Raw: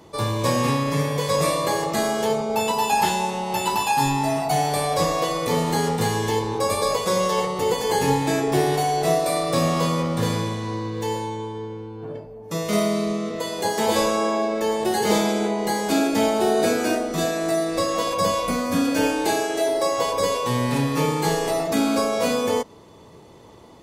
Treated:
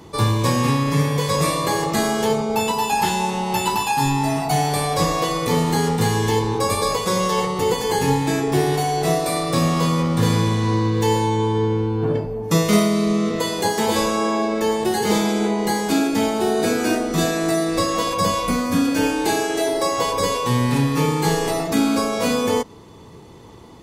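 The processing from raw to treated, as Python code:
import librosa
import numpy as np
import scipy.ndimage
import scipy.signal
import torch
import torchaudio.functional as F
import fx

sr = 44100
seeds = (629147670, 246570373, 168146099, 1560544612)

y = fx.peak_eq(x, sr, hz=600.0, db=-7.0, octaves=0.4)
y = fx.rider(y, sr, range_db=10, speed_s=0.5)
y = fx.low_shelf(y, sr, hz=200.0, db=4.5)
y = y * 10.0 ** (2.5 / 20.0)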